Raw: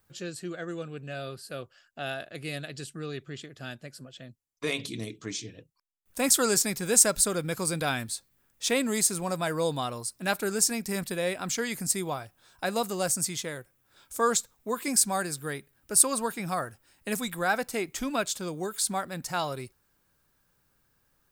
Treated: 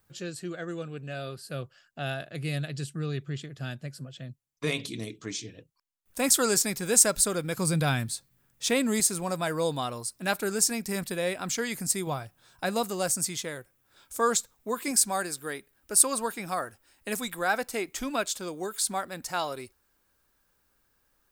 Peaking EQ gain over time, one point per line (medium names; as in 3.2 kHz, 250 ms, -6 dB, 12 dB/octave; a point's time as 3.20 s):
peaking EQ 140 Hz 0.82 oct
+2 dB
from 1.50 s +9.5 dB
from 4.78 s -1 dB
from 7.57 s +10.5 dB
from 9.00 s -0.5 dB
from 12.07 s +6 dB
from 12.84 s -2 dB
from 14.91 s -10 dB